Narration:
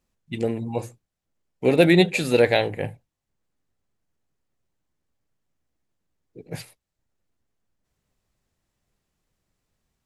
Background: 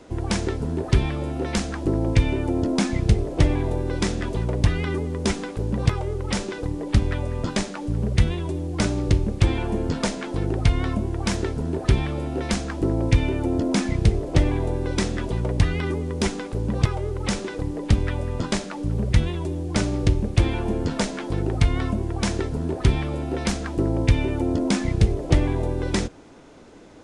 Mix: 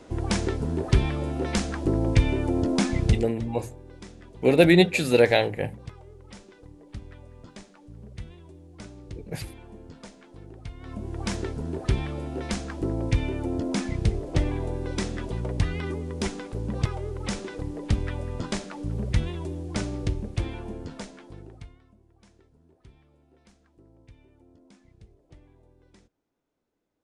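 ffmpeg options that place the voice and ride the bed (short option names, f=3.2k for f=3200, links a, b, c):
-filter_complex "[0:a]adelay=2800,volume=-0.5dB[a];[1:a]volume=13.5dB,afade=t=out:st=3.06:d=0.28:silence=0.112202,afade=t=in:st=10.8:d=0.41:silence=0.177828,afade=t=out:st=19.49:d=2.3:silence=0.0375837[b];[a][b]amix=inputs=2:normalize=0"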